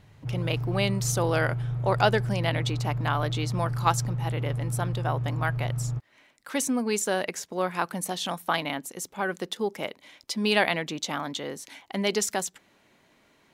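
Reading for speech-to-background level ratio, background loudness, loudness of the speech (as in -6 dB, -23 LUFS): 2.0 dB, -31.0 LUFS, -29.0 LUFS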